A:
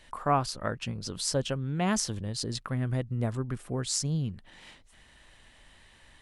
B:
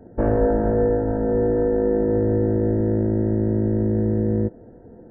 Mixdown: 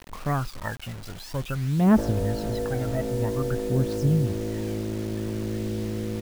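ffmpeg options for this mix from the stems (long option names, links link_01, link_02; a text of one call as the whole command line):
ffmpeg -i stem1.wav -i stem2.wav -filter_complex "[0:a]aphaser=in_gain=1:out_gain=1:delay=1.6:decay=0.78:speed=0.51:type=triangular,lowpass=2300,volume=-0.5dB[link_01];[1:a]acompressor=threshold=-26dB:ratio=6,adelay=1800,volume=-0.5dB[link_02];[link_01][link_02]amix=inputs=2:normalize=0,acrusher=bits=6:mix=0:aa=0.000001" out.wav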